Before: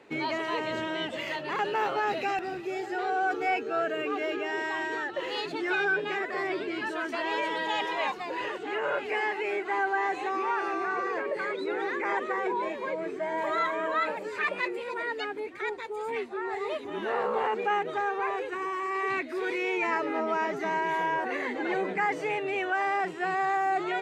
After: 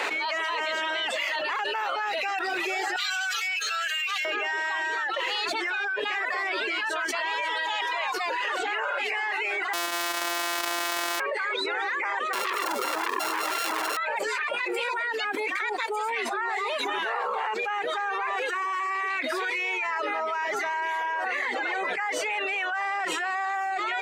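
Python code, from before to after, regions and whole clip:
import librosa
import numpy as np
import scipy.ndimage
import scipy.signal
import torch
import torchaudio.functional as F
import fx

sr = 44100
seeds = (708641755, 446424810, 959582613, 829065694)

y = fx.chain(x, sr, fx.cheby1_highpass(hz=3000.0, order=2),
    fx.high_shelf(hz=6900.0, db=8.5), at=(2.96, 4.25))
y = fx.chain(y, sr, fx.sample_sort(block=256),
    fx.comb(ms=3.1, depth=0.85), at=(9.73, 11.2))
y = fx.chain(y, sr, fx.sample_sort(block=32),
    fx.low_shelf_res(hz=560.0, db=13.0, q=1.5),
    fx.transformer_sat(knee_hz=2200.0), at=(12.33, 13.97))
y = scipy.signal.sosfilt(scipy.signal.butter(2, 900.0, 'highpass', fs=sr, output='sos'), y)
y = fx.dereverb_blind(y, sr, rt60_s=0.64)
y = fx.env_flatten(y, sr, amount_pct=100)
y = F.gain(torch.from_numpy(y), -3.0).numpy()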